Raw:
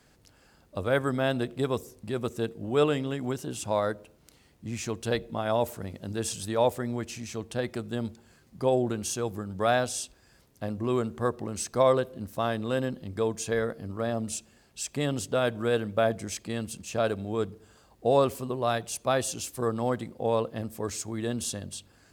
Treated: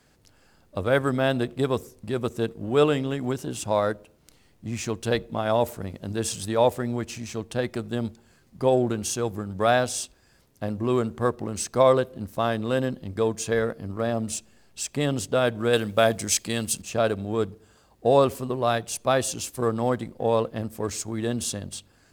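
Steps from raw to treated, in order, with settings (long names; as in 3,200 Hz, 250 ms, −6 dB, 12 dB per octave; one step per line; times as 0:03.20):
0:15.73–0:16.82: high-shelf EQ 2,600 Hz +11.5 dB
in parallel at −5 dB: slack as between gear wheels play −36.5 dBFS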